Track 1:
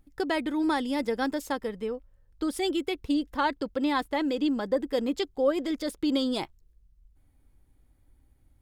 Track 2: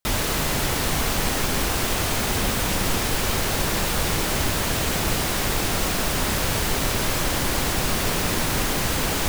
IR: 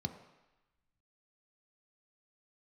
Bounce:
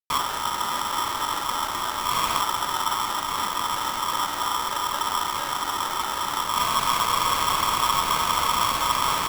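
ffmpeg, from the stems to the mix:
-filter_complex "[0:a]acompressor=threshold=-32dB:ratio=6,volume=-7dB,asplit=2[link_01][link_02];[1:a]acrossover=split=2600[link_03][link_04];[link_04]acompressor=threshold=-34dB:ratio=4:attack=1:release=60[link_05];[link_03][link_05]amix=inputs=2:normalize=0,adelay=50,volume=-1dB,asplit=2[link_06][link_07];[link_07]volume=-7dB[link_08];[link_02]apad=whole_len=411853[link_09];[link_06][link_09]sidechaincompress=threshold=-59dB:ratio=8:attack=35:release=141[link_10];[2:a]atrim=start_sample=2205[link_11];[link_08][link_11]afir=irnorm=-1:irlink=0[link_12];[link_01][link_10][link_12]amix=inputs=3:normalize=0,acrusher=bits=6:mix=0:aa=0.000001,aeval=exprs='val(0)*sgn(sin(2*PI*1100*n/s))':channel_layout=same"

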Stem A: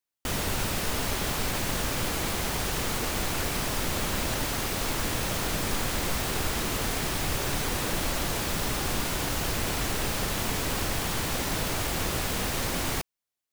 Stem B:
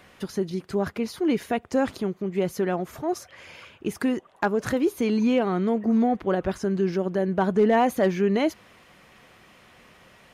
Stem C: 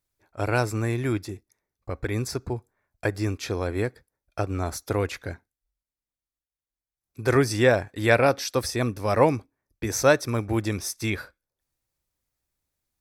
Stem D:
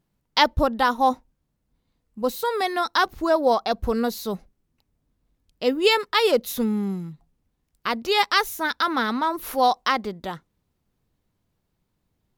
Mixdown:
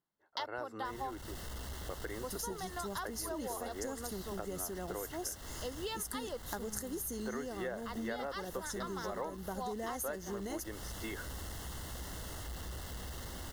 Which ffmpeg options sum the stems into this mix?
ffmpeg -i stem1.wav -i stem2.wav -i stem3.wav -i stem4.wav -filter_complex "[0:a]equalizer=frequency=62:width_type=o:width=0.73:gain=14,asoftclip=type=tanh:threshold=-23dB,adelay=600,volume=-14.5dB[link_01];[1:a]aexciter=amount=12:drive=5.5:freq=5200,adelay=2100,volume=-10dB[link_02];[2:a]acrossover=split=300 3100:gain=0.112 1 0.158[link_03][link_04][link_05];[link_03][link_04][link_05]amix=inputs=3:normalize=0,volume=-6dB[link_06];[3:a]highpass=frequency=360:poles=1,equalizer=frequency=1000:width=1.5:gain=4,volume=-13.5dB[link_07];[link_01][link_02][link_06][link_07]amix=inputs=4:normalize=0,asuperstop=centerf=2400:order=12:qfactor=5,acompressor=threshold=-37dB:ratio=6" out.wav

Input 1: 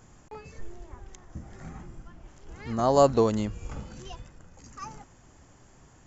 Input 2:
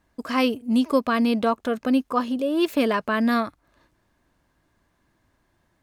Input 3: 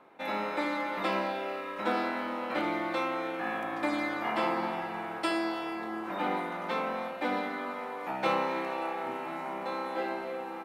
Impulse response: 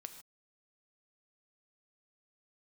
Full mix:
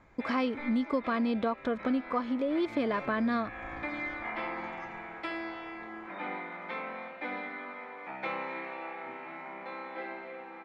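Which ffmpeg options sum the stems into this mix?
-filter_complex "[0:a]volume=24dB,asoftclip=hard,volume=-24dB,volume=-12dB[link_01];[1:a]volume=1.5dB[link_02];[2:a]equalizer=frequency=2200:width=1.8:gain=10,volume=-8dB[link_03];[link_01][link_02][link_03]amix=inputs=3:normalize=0,lowpass=3600,bandreject=frequency=2800:width=7.9,acompressor=threshold=-30dB:ratio=3"

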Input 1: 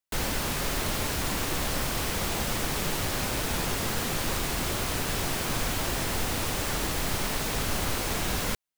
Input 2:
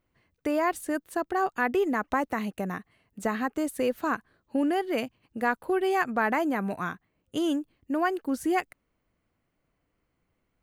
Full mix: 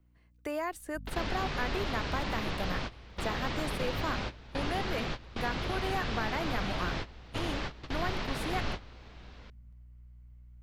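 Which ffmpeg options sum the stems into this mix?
ffmpeg -i stem1.wav -i stem2.wav -filter_complex "[0:a]lowpass=frequency=4500:width=0.5412,lowpass=frequency=4500:width=1.3066,aeval=exprs='val(0)+0.0126*(sin(2*PI*50*n/s)+sin(2*PI*2*50*n/s)/2+sin(2*PI*3*50*n/s)/3+sin(2*PI*4*50*n/s)/4+sin(2*PI*5*50*n/s)/5)':channel_layout=same,adelay=950,volume=-4.5dB[link_01];[1:a]aeval=exprs='val(0)+0.000891*(sin(2*PI*60*n/s)+sin(2*PI*2*60*n/s)/2+sin(2*PI*3*60*n/s)/3+sin(2*PI*4*60*n/s)/4+sin(2*PI*5*60*n/s)/5)':channel_layout=same,asubboost=boost=8.5:cutoff=98,acrossover=split=210|490|2400[link_02][link_03][link_04][link_05];[link_02]acompressor=threshold=-44dB:ratio=4[link_06];[link_03]acompressor=threshold=-41dB:ratio=4[link_07];[link_04]acompressor=threshold=-30dB:ratio=4[link_08];[link_05]acompressor=threshold=-44dB:ratio=4[link_09];[link_06][link_07][link_08][link_09]amix=inputs=4:normalize=0,volume=-3.5dB,asplit=2[link_10][link_11];[link_11]apad=whole_len=428907[link_12];[link_01][link_12]sidechaingate=range=-19dB:threshold=-48dB:ratio=16:detection=peak[link_13];[link_13][link_10]amix=inputs=2:normalize=0" out.wav

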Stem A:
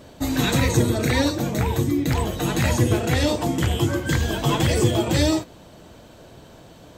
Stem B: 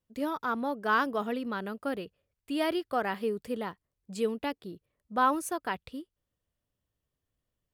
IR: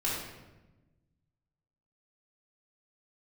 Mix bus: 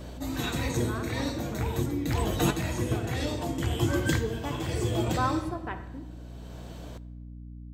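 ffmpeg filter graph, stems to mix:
-filter_complex "[0:a]volume=-0.5dB,asplit=2[link_01][link_02];[link_02]volume=-22.5dB[link_03];[1:a]afwtdn=0.0112,volume=-5.5dB,afade=type=in:start_time=4.03:duration=0.25:silence=0.298538,asplit=3[link_04][link_05][link_06];[link_05]volume=-13dB[link_07];[link_06]apad=whole_len=307613[link_08];[link_01][link_08]sidechaincompress=threshold=-56dB:ratio=8:attack=16:release=562[link_09];[2:a]atrim=start_sample=2205[link_10];[link_03][link_07]amix=inputs=2:normalize=0[link_11];[link_11][link_10]afir=irnorm=-1:irlink=0[link_12];[link_09][link_04][link_12]amix=inputs=3:normalize=0,aeval=exprs='val(0)+0.00891*(sin(2*PI*60*n/s)+sin(2*PI*2*60*n/s)/2+sin(2*PI*3*60*n/s)/3+sin(2*PI*4*60*n/s)/4+sin(2*PI*5*60*n/s)/5)':channel_layout=same"

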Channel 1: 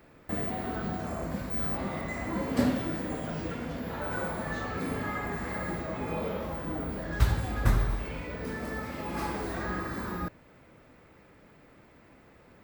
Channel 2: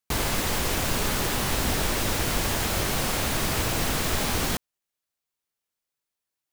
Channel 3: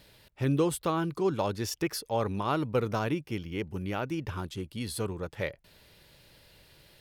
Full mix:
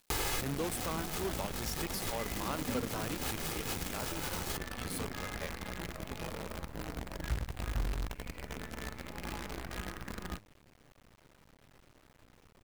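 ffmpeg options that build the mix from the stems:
ffmpeg -i stem1.wav -i stem2.wav -i stem3.wav -filter_complex "[0:a]aemphasis=mode=reproduction:type=bsi,bandreject=frequency=102.4:width_type=h:width=4,bandreject=frequency=204.8:width_type=h:width=4,bandreject=frequency=307.2:width_type=h:width=4,bandreject=frequency=409.6:width_type=h:width=4,bandreject=frequency=512:width_type=h:width=4,adynamicequalizer=threshold=0.00158:dfrequency=2300:dqfactor=2.5:tfrequency=2300:tqfactor=2.5:attack=5:release=100:ratio=0.375:range=3.5:mode=boostabove:tftype=bell,adelay=100,volume=-6.5dB[link_01];[1:a]aecho=1:1:2.4:0.56,volume=1.5dB[link_02];[2:a]highshelf=frequency=5900:gain=6.5,volume=-9.5dB,asplit=2[link_03][link_04];[link_04]apad=whole_len=287981[link_05];[link_02][link_05]sidechaincompress=threshold=-55dB:ratio=12:attack=16:release=108[link_06];[link_01][link_06]amix=inputs=2:normalize=0,acompressor=threshold=-38dB:ratio=2,volume=0dB[link_07];[link_03][link_07]amix=inputs=2:normalize=0,lowshelf=frequency=290:gain=-4,acrusher=bits=7:dc=4:mix=0:aa=0.000001" out.wav

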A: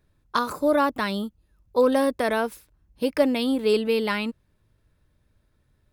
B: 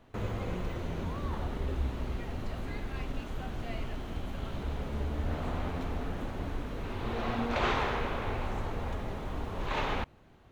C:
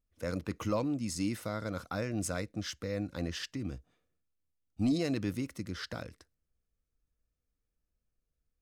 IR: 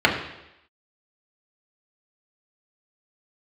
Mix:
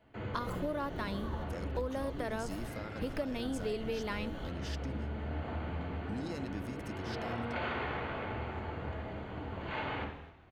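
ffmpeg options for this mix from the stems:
-filter_complex "[0:a]equalizer=frequency=9900:width_type=o:width=2:gain=-4,volume=-9.5dB,asplit=2[link_01][link_02];[1:a]volume=-7.5dB,asplit=3[link_03][link_04][link_05];[link_04]volume=-16dB[link_06];[link_05]volume=-19.5dB[link_07];[2:a]acompressor=threshold=-43dB:ratio=2,adelay=1300,volume=-1.5dB[link_08];[link_02]apad=whole_len=463664[link_09];[link_03][link_09]sidechaingate=range=-33dB:threshold=-59dB:ratio=16:detection=peak[link_10];[3:a]atrim=start_sample=2205[link_11];[link_06][link_11]afir=irnorm=-1:irlink=0[link_12];[link_07]aecho=0:1:253|506|759|1012|1265:1|0.34|0.116|0.0393|0.0134[link_13];[link_01][link_10][link_08][link_12][link_13]amix=inputs=5:normalize=0,acompressor=threshold=-32dB:ratio=6"

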